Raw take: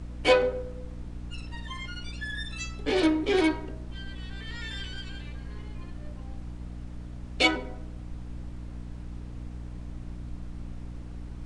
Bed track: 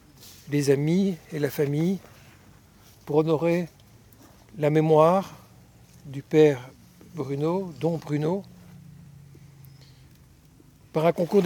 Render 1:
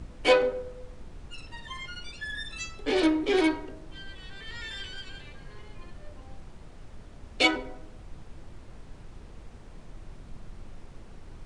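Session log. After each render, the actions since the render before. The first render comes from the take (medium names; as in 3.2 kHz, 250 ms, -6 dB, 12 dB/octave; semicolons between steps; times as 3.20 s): de-hum 60 Hz, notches 5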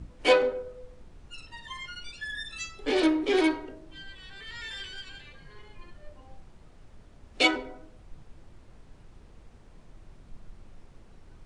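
noise print and reduce 6 dB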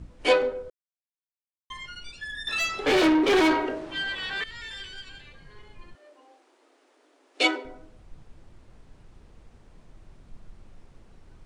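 0.70–1.70 s: mute; 2.47–4.44 s: overdrive pedal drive 26 dB, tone 2.3 kHz, clips at -13 dBFS; 5.95–7.65 s: brick-wall FIR high-pass 260 Hz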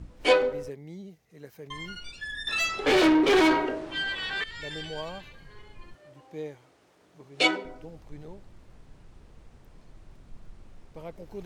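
add bed track -20 dB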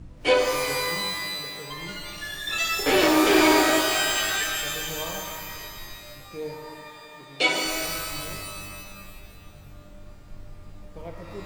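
pitch-shifted reverb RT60 2 s, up +12 st, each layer -2 dB, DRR 1.5 dB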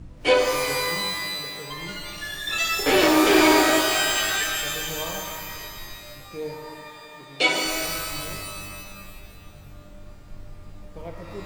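trim +1.5 dB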